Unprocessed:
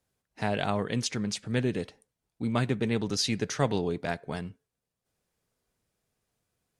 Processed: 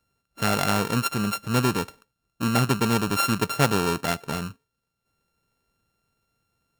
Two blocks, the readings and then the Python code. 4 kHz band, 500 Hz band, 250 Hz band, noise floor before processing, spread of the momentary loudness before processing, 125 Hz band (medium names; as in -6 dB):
+5.0 dB, +3.0 dB, +5.0 dB, under -85 dBFS, 9 LU, +5.5 dB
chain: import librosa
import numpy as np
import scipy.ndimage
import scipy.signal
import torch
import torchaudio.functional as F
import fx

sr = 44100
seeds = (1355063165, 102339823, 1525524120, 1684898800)

y = np.r_[np.sort(x[:len(x) // 32 * 32].reshape(-1, 32), axis=1).ravel(), x[len(x) // 32 * 32:]]
y = y * librosa.db_to_amplitude(5.5)